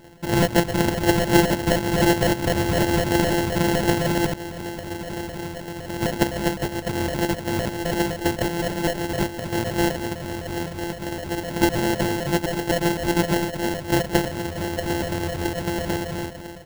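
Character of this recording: a buzz of ramps at a fixed pitch in blocks of 128 samples; phasing stages 12, 3.9 Hz, lowest notch 340–2400 Hz; aliases and images of a low sample rate 1.2 kHz, jitter 0%

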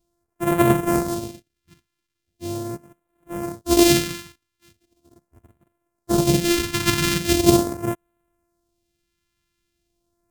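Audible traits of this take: a buzz of ramps at a fixed pitch in blocks of 128 samples; phasing stages 2, 0.4 Hz, lowest notch 570–4600 Hz; AAC

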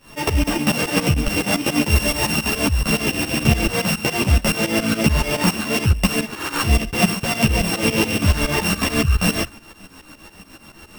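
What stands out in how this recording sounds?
a buzz of ramps at a fixed pitch in blocks of 16 samples; tremolo saw up 7.1 Hz, depth 90%; a shimmering, thickened sound

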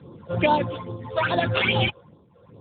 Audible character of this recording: a buzz of ramps at a fixed pitch in blocks of 8 samples; tremolo triangle 0.77 Hz, depth 85%; phasing stages 8, 2.4 Hz, lowest notch 240–2300 Hz; AMR-NB

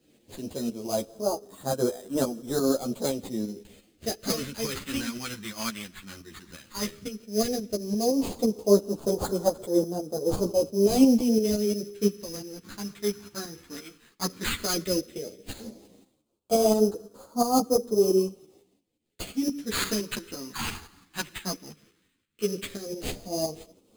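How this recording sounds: aliases and images of a low sample rate 5.6 kHz, jitter 0%; phasing stages 2, 0.13 Hz, lowest notch 530–2100 Hz; tremolo saw up 5.8 Hz, depth 60%; a shimmering, thickened sound

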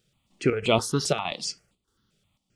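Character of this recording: chopped level 1.6 Hz, depth 60%, duty 80%; notches that jump at a steady rate 7.6 Hz 270–5700 Hz

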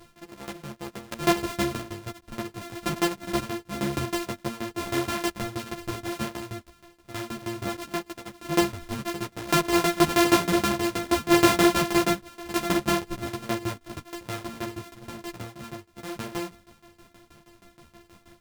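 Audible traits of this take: a buzz of ramps at a fixed pitch in blocks of 128 samples; tremolo saw down 6.3 Hz, depth 95%; a shimmering, thickened sound

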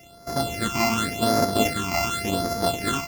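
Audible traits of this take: a buzz of ramps at a fixed pitch in blocks of 64 samples; phasing stages 8, 0.89 Hz, lowest notch 470–2900 Hz

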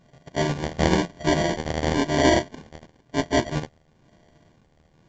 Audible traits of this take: a buzz of ramps at a fixed pitch in blocks of 64 samples; phasing stages 2, 0.99 Hz, lowest notch 370–4700 Hz; aliases and images of a low sample rate 1.3 kHz, jitter 0%; µ-law

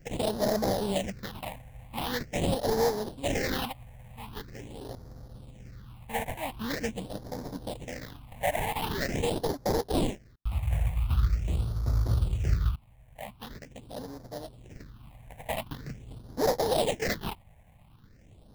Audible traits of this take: aliases and images of a low sample rate 1.3 kHz, jitter 20%; phasing stages 6, 0.44 Hz, lowest notch 340–2700 Hz

